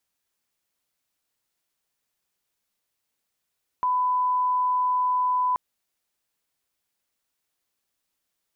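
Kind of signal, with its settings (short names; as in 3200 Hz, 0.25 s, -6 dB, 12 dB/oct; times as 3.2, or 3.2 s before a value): line-up tone -20 dBFS 1.73 s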